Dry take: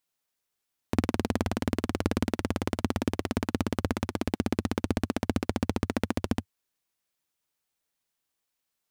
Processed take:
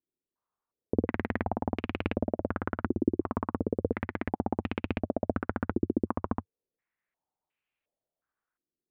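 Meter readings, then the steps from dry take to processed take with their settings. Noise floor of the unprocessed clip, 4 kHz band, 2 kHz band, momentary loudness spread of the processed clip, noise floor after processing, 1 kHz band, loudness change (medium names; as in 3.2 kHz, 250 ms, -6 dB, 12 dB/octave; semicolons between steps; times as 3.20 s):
-83 dBFS, -11.5 dB, -1.5 dB, 4 LU, under -85 dBFS, 0.0 dB, -1.5 dB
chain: distance through air 160 m; step-sequenced low-pass 2.8 Hz 350–2600 Hz; trim -4 dB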